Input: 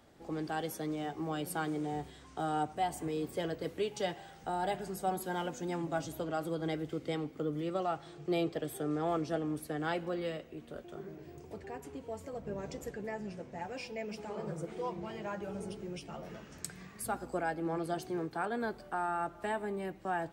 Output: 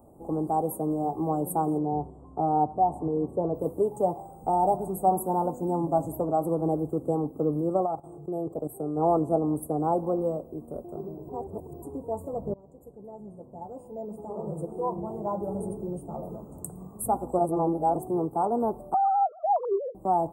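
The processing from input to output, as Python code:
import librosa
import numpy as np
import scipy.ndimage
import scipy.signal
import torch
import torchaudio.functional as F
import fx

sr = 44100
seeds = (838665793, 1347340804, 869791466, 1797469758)

y = fx.spacing_loss(x, sr, db_at_10k=21, at=(1.77, 3.54), fade=0.02)
y = fx.level_steps(y, sr, step_db=13, at=(7.85, 8.96), fade=0.02)
y = fx.sine_speech(y, sr, at=(18.94, 19.95))
y = fx.edit(y, sr, fx.reverse_span(start_s=11.29, length_s=0.53),
    fx.fade_in_from(start_s=12.54, length_s=2.84, floor_db=-22.5),
    fx.reverse_span(start_s=17.39, length_s=0.57), tone=tone)
y = scipy.signal.sosfilt(scipy.signal.cheby2(4, 40, [1600.0, 5800.0], 'bandstop', fs=sr, output='sos'), y)
y = fx.dynamic_eq(y, sr, hz=950.0, q=1.4, threshold_db=-47.0, ratio=4.0, max_db=5)
y = y * librosa.db_to_amplitude(8.5)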